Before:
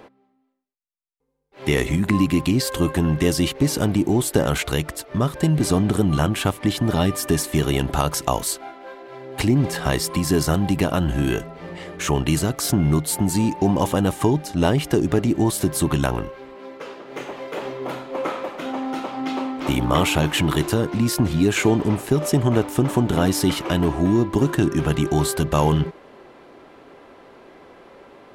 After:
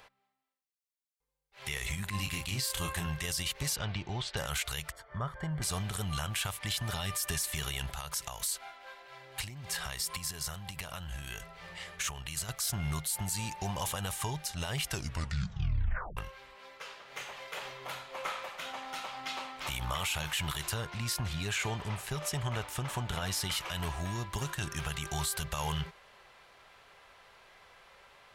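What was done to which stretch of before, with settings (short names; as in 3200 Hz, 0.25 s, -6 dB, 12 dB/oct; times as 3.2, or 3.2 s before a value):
2.12–3.06 doubler 30 ms -5.5 dB
3.76–4.37 LPF 4500 Hz 24 dB/oct
4.92–5.62 polynomial smoothing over 41 samples
7.93–12.49 compressor, threshold -25 dBFS
14.87 tape stop 1.30 s
20.7–23.5 high shelf 5800 Hz -8.5 dB
whole clip: passive tone stack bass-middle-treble 10-0-10; limiter -23 dBFS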